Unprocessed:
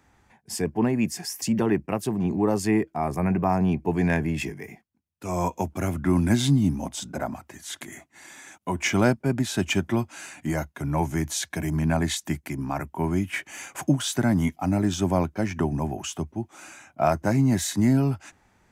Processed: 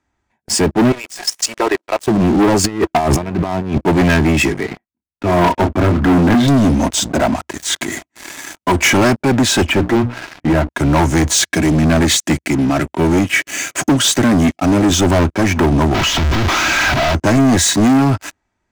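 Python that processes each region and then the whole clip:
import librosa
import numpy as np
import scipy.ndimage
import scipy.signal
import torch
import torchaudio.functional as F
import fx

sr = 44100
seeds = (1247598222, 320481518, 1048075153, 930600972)

y = fx.chain(x, sr, fx.law_mismatch(coded='mu'),
    fx.highpass(hz=470.0, slope=24),
    fx.level_steps(step_db=15), at=(0.92, 2.08))
y = fx.chain(y, sr, fx.over_compress(threshold_db=-34.0, ratio=-1.0),
    fx.transient(attack_db=11, sustain_db=-7), at=(2.64, 3.78))
y = fx.chain(y, sr, fx.lowpass(hz=2000.0, slope=12),
    fx.doubler(ms=29.0, db=-7.5), at=(4.61, 6.48))
y = fx.chain(y, sr, fx.air_absorb(metres=460.0),
    fx.hum_notches(base_hz=60, count=5), at=(9.66, 10.69))
y = fx.chain(y, sr, fx.highpass(hz=100.0, slope=12),
    fx.peak_eq(hz=920.0, db=-12.0, octaves=0.62), at=(11.42, 14.92))
y = fx.chain(y, sr, fx.clip_1bit(),
    fx.moving_average(points=5),
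    fx.peak_eq(hz=400.0, db=-8.0, octaves=2.3), at=(15.94, 17.15))
y = scipy.signal.sosfilt(scipy.signal.butter(4, 8800.0, 'lowpass', fs=sr, output='sos'), y)
y = y + 0.36 * np.pad(y, (int(3.1 * sr / 1000.0), 0))[:len(y)]
y = fx.leveller(y, sr, passes=5)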